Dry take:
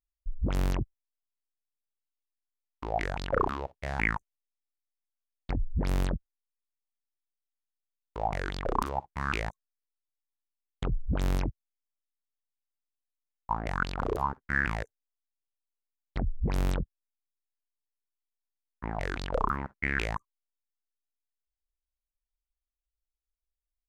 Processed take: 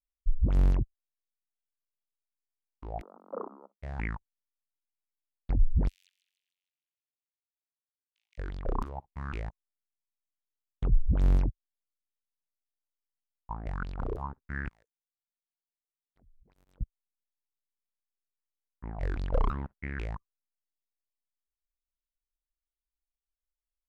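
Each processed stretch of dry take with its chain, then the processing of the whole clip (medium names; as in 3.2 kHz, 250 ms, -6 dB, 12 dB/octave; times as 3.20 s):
3.00–3.80 s: formants flattened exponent 0.3 + Chebyshev band-pass 200–1300 Hz, order 5
5.88–8.38 s: steep high-pass 2.5 kHz + two-band feedback delay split 2.9 kHz, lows 199 ms, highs 152 ms, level -12 dB
14.68–16.81 s: RIAA curve recording + slow attack 156 ms + compression 2.5:1, threshold -55 dBFS
19.02–19.77 s: hard clipper -17.5 dBFS + waveshaping leveller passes 1
whole clip: tilt EQ -2.5 dB/octave; upward expansion 1.5:1, over -38 dBFS; trim -3.5 dB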